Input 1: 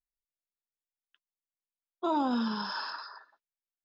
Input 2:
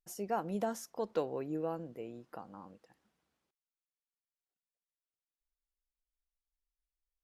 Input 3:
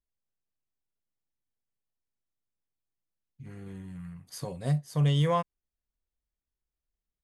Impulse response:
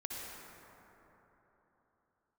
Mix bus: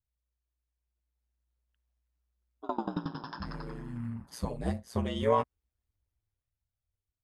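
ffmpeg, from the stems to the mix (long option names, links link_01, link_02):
-filter_complex "[0:a]aeval=exprs='val(0)*pow(10,-29*if(lt(mod(11*n/s,1),2*abs(11)/1000),1-mod(11*n/s,1)/(2*abs(11)/1000),(mod(11*n/s,1)-2*abs(11)/1000)/(1-2*abs(11)/1000))/20)':channel_layout=same,adelay=600,volume=-2.5dB,asplit=2[link_01][link_02];[link_02]volume=-10.5dB[link_03];[2:a]alimiter=limit=-21.5dB:level=0:latency=1:release=25,flanger=delay=1.3:depth=9.4:regen=-3:speed=0.3:shape=sinusoidal,volume=3dB[link_04];[3:a]atrim=start_sample=2205[link_05];[link_03][link_05]afir=irnorm=-1:irlink=0[link_06];[link_01][link_04][link_06]amix=inputs=3:normalize=0,highshelf=frequency=2600:gain=-8,dynaudnorm=framelen=250:gausssize=9:maxgain=6.5dB,aeval=exprs='val(0)*sin(2*PI*60*n/s)':channel_layout=same"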